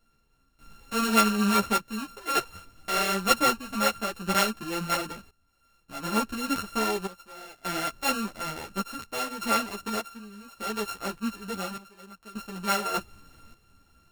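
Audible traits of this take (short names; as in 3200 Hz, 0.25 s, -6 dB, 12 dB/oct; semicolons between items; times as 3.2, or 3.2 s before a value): a buzz of ramps at a fixed pitch in blocks of 32 samples; random-step tremolo 1.7 Hz, depth 90%; a shimmering, thickened sound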